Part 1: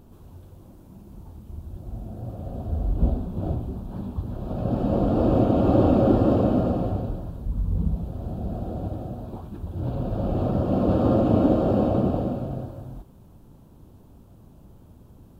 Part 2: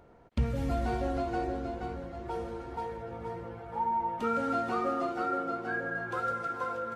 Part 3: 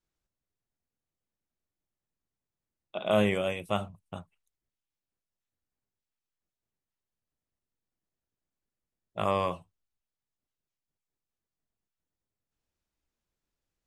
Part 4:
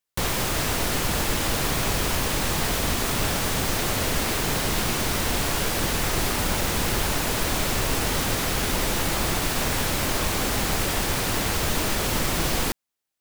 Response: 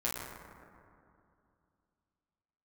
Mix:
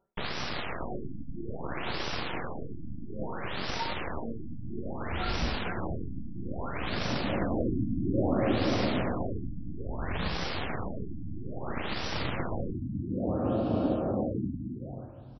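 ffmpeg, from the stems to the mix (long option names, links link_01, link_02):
-filter_complex "[0:a]highshelf=frequency=2000:gain=8,adelay=2400,volume=-8.5dB[link_01];[1:a]aecho=1:1:5.2:0.91,dynaudnorm=framelen=440:gausssize=3:maxgain=12dB,aeval=exprs='val(0)*pow(10,-29*(0.5-0.5*cos(2*PI*2.1*n/s))/20)':channel_layout=same,volume=-19dB[link_02];[2:a]aecho=1:1:5.8:0.87,volume=-19.5dB[link_03];[3:a]aeval=exprs='abs(val(0))':channel_layout=same,volume=-4dB[link_04];[link_01][link_02][link_03][link_04]amix=inputs=4:normalize=0,lowshelf=frequency=64:gain=-6.5,afftfilt=real='re*lt(b*sr/1024,300*pow(6000/300,0.5+0.5*sin(2*PI*0.6*pts/sr)))':imag='im*lt(b*sr/1024,300*pow(6000/300,0.5+0.5*sin(2*PI*0.6*pts/sr)))':win_size=1024:overlap=0.75"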